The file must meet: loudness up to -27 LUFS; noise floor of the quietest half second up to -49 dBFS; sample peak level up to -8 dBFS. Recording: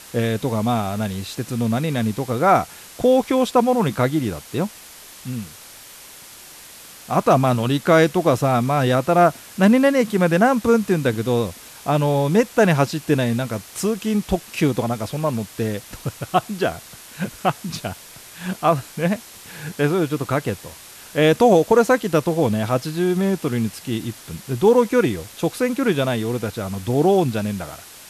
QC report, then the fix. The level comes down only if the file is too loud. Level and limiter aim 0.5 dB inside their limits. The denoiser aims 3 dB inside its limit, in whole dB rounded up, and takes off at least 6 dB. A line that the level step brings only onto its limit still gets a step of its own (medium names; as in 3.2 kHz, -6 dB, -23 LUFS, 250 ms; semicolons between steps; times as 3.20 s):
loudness -20.0 LUFS: fail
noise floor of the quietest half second -42 dBFS: fail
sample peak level -4.5 dBFS: fail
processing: trim -7.5 dB